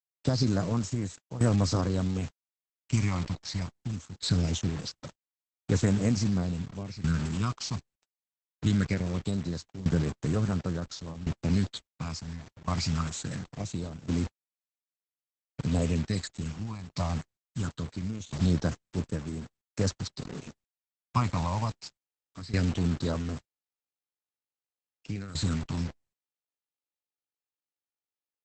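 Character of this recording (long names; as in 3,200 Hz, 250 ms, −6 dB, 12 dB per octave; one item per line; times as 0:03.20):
phaser sweep stages 8, 0.22 Hz, lowest notch 420–4,400 Hz
a quantiser's noise floor 6 bits, dither none
tremolo saw down 0.71 Hz, depth 85%
Opus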